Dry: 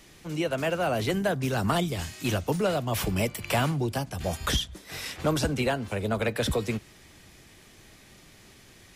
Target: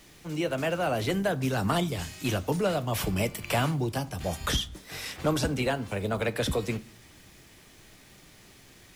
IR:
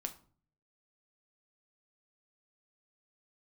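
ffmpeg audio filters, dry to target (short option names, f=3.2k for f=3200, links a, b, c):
-filter_complex "[0:a]acrusher=bits=8:mix=0:aa=0.5,asplit=2[a][b];[1:a]atrim=start_sample=2205[c];[b][c]afir=irnorm=-1:irlink=0,volume=-1.5dB[d];[a][d]amix=inputs=2:normalize=0,volume=-5.5dB"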